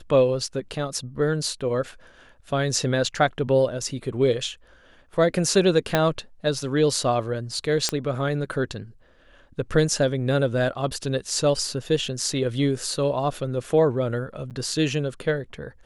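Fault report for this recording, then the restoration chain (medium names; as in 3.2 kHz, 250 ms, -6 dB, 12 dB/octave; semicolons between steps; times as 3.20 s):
5.95 s: pop -5 dBFS
7.89 s: pop -7 dBFS
14.50–14.51 s: dropout 8 ms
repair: de-click; interpolate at 14.50 s, 8 ms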